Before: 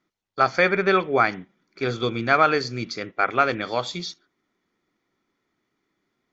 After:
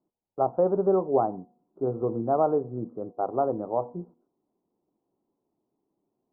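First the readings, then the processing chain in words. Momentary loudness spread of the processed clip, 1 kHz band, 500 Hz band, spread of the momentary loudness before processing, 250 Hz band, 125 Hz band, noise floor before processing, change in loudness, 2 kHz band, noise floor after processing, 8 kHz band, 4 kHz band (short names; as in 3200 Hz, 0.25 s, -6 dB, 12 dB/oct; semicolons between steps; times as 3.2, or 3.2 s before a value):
13 LU, -6.5 dB, -0.5 dB, 13 LU, -2.0 dB, -4.0 dB, -77 dBFS, -5.0 dB, under -30 dB, -82 dBFS, n/a, under -40 dB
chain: steep low-pass 940 Hz 48 dB/oct; low shelf 130 Hz -8.5 dB; de-hum 241.3 Hz, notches 4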